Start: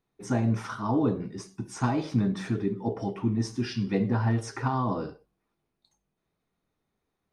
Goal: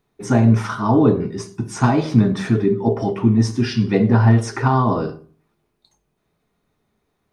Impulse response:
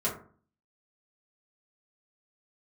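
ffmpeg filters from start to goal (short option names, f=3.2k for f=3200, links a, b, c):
-filter_complex "[0:a]asplit=2[a][b];[1:a]atrim=start_sample=2205,lowpass=4.5k[c];[b][c]afir=irnorm=-1:irlink=0,volume=-16.5dB[d];[a][d]amix=inputs=2:normalize=0,volume=9dB"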